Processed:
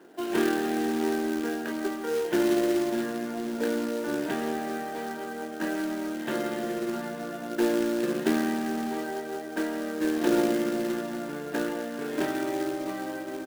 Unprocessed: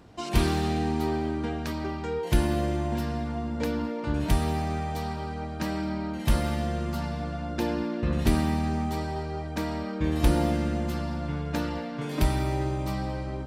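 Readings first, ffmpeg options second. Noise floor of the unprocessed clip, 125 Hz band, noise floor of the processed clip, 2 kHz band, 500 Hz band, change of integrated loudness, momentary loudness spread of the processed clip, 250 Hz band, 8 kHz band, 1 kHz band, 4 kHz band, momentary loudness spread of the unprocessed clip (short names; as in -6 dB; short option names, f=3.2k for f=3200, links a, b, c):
-35 dBFS, -18.0 dB, -37 dBFS, +3.0 dB, +3.5 dB, 0.0 dB, 9 LU, +1.5 dB, +1.5 dB, -2.0 dB, -1.5 dB, 7 LU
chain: -af "highpass=f=250:w=0.5412,highpass=f=250:w=1.3066,equalizer=f=370:t=q:w=4:g=8,equalizer=f=1.1k:t=q:w=4:g=-7,equalizer=f=1.6k:t=q:w=4:g=7,equalizer=f=2.3k:t=q:w=4:g=-8,lowpass=f=3k:w=0.5412,lowpass=f=3k:w=1.3066,aecho=1:1:22|34:0.422|0.282,acrusher=bits=3:mode=log:mix=0:aa=0.000001"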